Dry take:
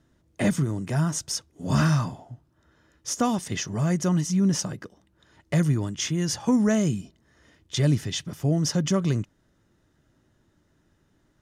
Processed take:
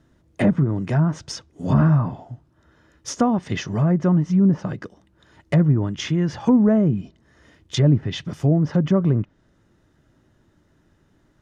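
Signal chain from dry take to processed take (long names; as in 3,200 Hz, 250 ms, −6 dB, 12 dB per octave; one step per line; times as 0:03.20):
treble cut that deepens with the level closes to 1,000 Hz, closed at −19 dBFS
high-shelf EQ 4,000 Hz −5.5 dB
level +5.5 dB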